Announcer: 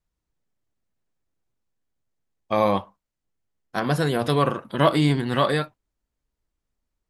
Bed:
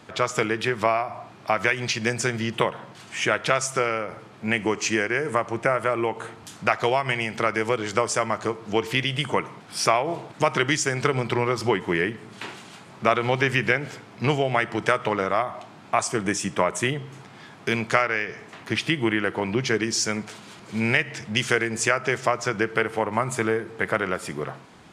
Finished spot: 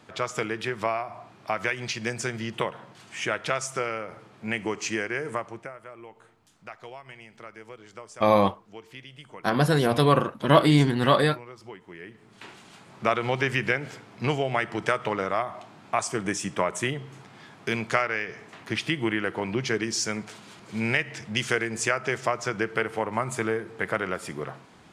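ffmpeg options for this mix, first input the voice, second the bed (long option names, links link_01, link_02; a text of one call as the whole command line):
ffmpeg -i stem1.wav -i stem2.wav -filter_complex "[0:a]adelay=5700,volume=1dB[link_01];[1:a]volume=11.5dB,afade=type=out:start_time=5.28:duration=0.44:silence=0.177828,afade=type=in:start_time=11.99:duration=1.02:silence=0.141254[link_02];[link_01][link_02]amix=inputs=2:normalize=0" out.wav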